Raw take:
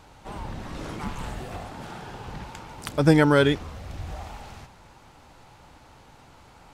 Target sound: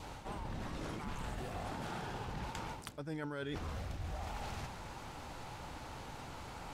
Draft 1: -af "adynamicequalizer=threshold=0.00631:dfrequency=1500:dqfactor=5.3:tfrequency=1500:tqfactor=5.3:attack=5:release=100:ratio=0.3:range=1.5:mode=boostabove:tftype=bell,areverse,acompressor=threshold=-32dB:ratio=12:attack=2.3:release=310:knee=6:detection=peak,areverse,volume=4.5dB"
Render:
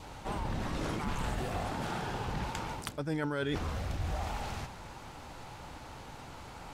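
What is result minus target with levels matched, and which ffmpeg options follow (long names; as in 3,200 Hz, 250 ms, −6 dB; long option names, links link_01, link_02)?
downward compressor: peak gain reduction −8 dB
-af "adynamicequalizer=threshold=0.00631:dfrequency=1500:dqfactor=5.3:tfrequency=1500:tqfactor=5.3:attack=5:release=100:ratio=0.3:range=1.5:mode=boostabove:tftype=bell,areverse,acompressor=threshold=-40.5dB:ratio=12:attack=2.3:release=310:knee=6:detection=peak,areverse,volume=4.5dB"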